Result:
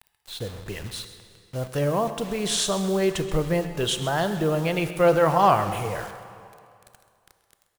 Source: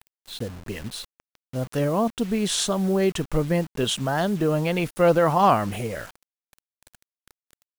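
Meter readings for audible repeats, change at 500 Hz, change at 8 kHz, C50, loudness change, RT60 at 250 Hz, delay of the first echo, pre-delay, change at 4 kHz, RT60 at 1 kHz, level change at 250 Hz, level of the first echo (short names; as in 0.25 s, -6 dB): 1, 0.0 dB, +0.5 dB, 9.5 dB, -0.5 dB, 2.3 s, 0.132 s, 18 ms, +0.5 dB, 2.4 s, -3.0 dB, -15.5 dB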